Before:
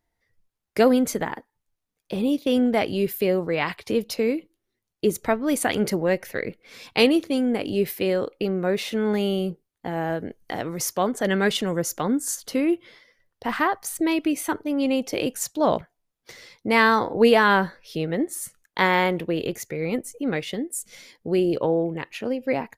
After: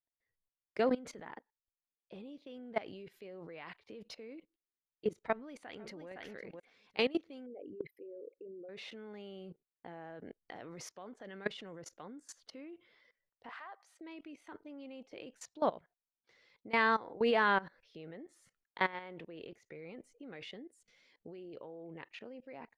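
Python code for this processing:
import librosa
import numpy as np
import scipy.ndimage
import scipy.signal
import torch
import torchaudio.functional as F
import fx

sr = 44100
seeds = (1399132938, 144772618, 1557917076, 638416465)

y = fx.echo_throw(x, sr, start_s=5.27, length_s=0.81, ms=510, feedback_pct=10, wet_db=-11.0)
y = fx.envelope_sharpen(y, sr, power=3.0, at=(7.46, 8.69))
y = fx.highpass(y, sr, hz=530.0, slope=24, at=(13.49, 14.01))
y = scipy.signal.sosfilt(scipy.signal.butter(2, 3800.0, 'lowpass', fs=sr, output='sos'), y)
y = fx.low_shelf(y, sr, hz=200.0, db=-8.5)
y = fx.level_steps(y, sr, step_db=20)
y = y * 10.0 ** (-8.0 / 20.0)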